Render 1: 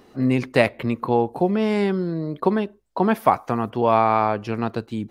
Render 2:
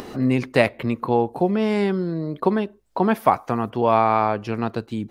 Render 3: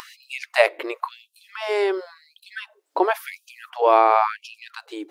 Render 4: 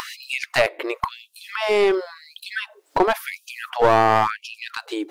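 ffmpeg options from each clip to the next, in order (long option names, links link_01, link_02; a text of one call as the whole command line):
ffmpeg -i in.wav -af "acompressor=mode=upward:threshold=-24dB:ratio=2.5" out.wav
ffmpeg -i in.wav -af "afftfilt=real='re*gte(b*sr/1024,260*pow(2500/260,0.5+0.5*sin(2*PI*0.94*pts/sr)))':imag='im*gte(b*sr/1024,260*pow(2500/260,0.5+0.5*sin(2*PI*0.94*pts/sr)))':win_size=1024:overlap=0.75,volume=2.5dB" out.wav
ffmpeg -i in.wav -filter_complex "[0:a]asplit=2[link_01][link_02];[link_02]acompressor=mode=upward:threshold=-25dB:ratio=2.5,volume=-2dB[link_03];[link_01][link_03]amix=inputs=2:normalize=0,alimiter=limit=-3dB:level=0:latency=1:release=487,aeval=exprs='clip(val(0),-1,0.168)':channel_layout=same" out.wav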